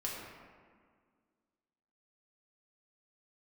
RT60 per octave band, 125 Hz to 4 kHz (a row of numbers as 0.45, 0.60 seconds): 1.9, 2.4, 1.9, 1.8, 1.5, 1.0 seconds